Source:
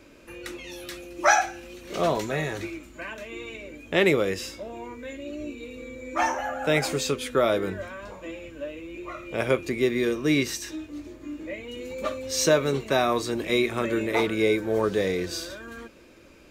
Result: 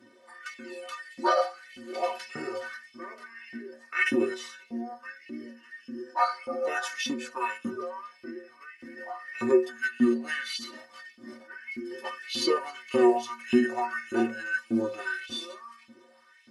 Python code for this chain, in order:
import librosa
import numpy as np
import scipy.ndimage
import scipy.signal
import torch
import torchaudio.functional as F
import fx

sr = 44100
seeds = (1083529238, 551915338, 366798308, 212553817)

y = fx.formant_shift(x, sr, semitones=-5)
y = fx.filter_lfo_highpass(y, sr, shape='saw_up', hz=1.7, low_hz=210.0, high_hz=3000.0, q=3.2)
y = fx.stiff_resonator(y, sr, f0_hz=110.0, decay_s=0.38, stiffness=0.03)
y = y * librosa.db_to_amplitude(6.0)